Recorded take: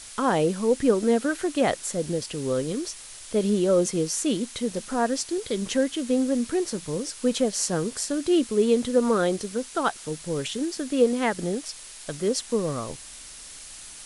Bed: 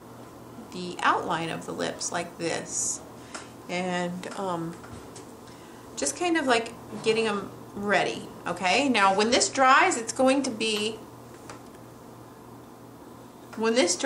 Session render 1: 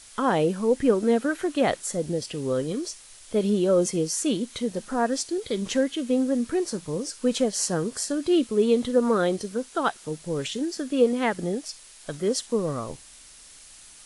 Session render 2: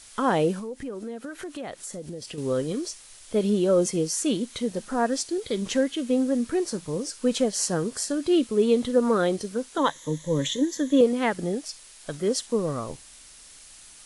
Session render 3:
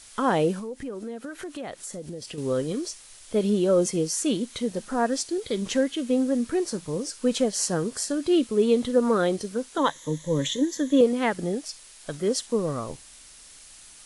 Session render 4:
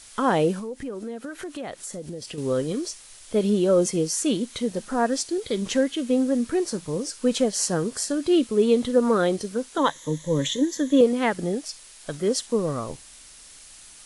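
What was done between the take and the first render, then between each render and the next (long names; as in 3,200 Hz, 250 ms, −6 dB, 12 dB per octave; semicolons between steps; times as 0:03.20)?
noise reduction from a noise print 6 dB
0:00.59–0:02.38: downward compressor 4 to 1, threshold −34 dBFS; 0:09.77–0:11.01: EQ curve with evenly spaced ripples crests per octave 1.1, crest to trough 14 dB
no processing that can be heard
level +1.5 dB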